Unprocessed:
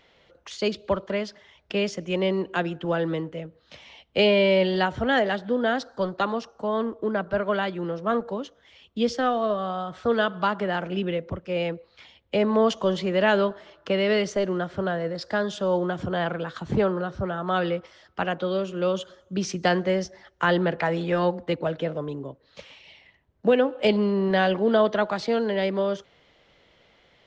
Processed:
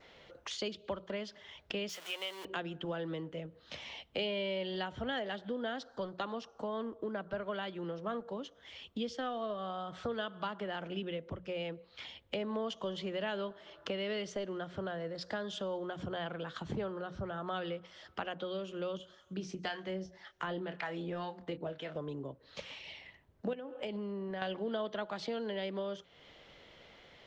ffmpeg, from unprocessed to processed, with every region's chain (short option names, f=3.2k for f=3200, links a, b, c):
-filter_complex "[0:a]asettb=1/sr,asplit=3[a][b][c];[a]atrim=end=1.894[d];[b]atrim=start=1.89:end=2.45,asetpts=PTS-STARTPTS,afade=t=in:d=0.004:c=qsin,afade=t=out:st=0.556:d=0.004:c=qsin,aeval=exprs='val(0)+0.5*0.0237*sgn(val(0))':c=same,highpass=1k[e];[c]atrim=start=2.446[f];[d][e]acrossfade=d=0.004:c1=hsin:c2=qsin[g];[g][f]acrossfade=d=0.004:c1=qsin:c2=hsin,asettb=1/sr,asplit=3[h][i][j];[h]atrim=end=18.974[k];[i]atrim=start=18.97:end=21.96,asetpts=PTS-STARTPTS,afade=t=in:d=0.004:c=qsin,afade=t=out:st=2.986:d=0.004:c=qsin,bandreject=f=540:w=13,acrossover=split=790[l][m];[l]aeval=exprs='val(0)*(1-0.7/2+0.7/2*cos(2*PI*1.9*n/s))':c=same[n];[m]aeval=exprs='val(0)*(1-0.7/2-0.7/2*cos(2*PI*1.9*n/s))':c=same[o];[n][o]amix=inputs=2:normalize=0,asplit=2[p][q];[q]adelay=27,volume=-10dB[r];[p][r]amix=inputs=2:normalize=0,atrim=end_sample=131859[s];[j]atrim=start=21.956[t];[k][s]acrossfade=d=0.004:c1=hsin:c2=qsin[u];[u][t]acrossfade=d=0.004:c1=qsin:c2=hsin,asettb=1/sr,asplit=3[v][w][x];[v]atrim=end=23.534[y];[w]atrim=start=23.53:end=24.42,asetpts=PTS-STARTPTS,afade=t=in:d=0.004:c=qsin,afade=t=out:st=0.886:d=0.004:c=qsin,equalizer=f=4k:t=o:w=0.87:g=-7.5,acompressor=threshold=-27dB:ratio=5:attack=3.2:release=140:knee=1:detection=peak[z];[x]atrim=start=24.416[aa];[y][z]acrossfade=d=0.004:c1=hsin:c2=qsin[ab];[ab][aa]acrossfade=d=0.004:c1=qsin:c2=hsin,adynamicequalizer=threshold=0.00398:dfrequency=3200:dqfactor=3.6:tfrequency=3200:tqfactor=3.6:attack=5:release=100:ratio=0.375:range=3.5:mode=boostabove:tftype=bell,acompressor=threshold=-42dB:ratio=3,bandreject=f=60:t=h:w=6,bandreject=f=120:t=h:w=6,bandreject=f=180:t=h:w=6,volume=1.5dB"